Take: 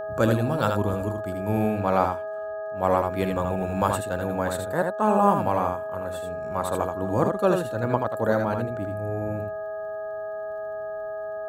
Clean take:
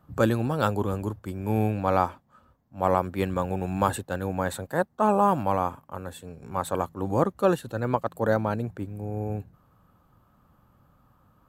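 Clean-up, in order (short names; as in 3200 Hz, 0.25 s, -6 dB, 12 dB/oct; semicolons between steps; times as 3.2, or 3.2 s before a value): de-click; de-hum 415.1 Hz, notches 4; notch 640 Hz, Q 30; inverse comb 79 ms -5 dB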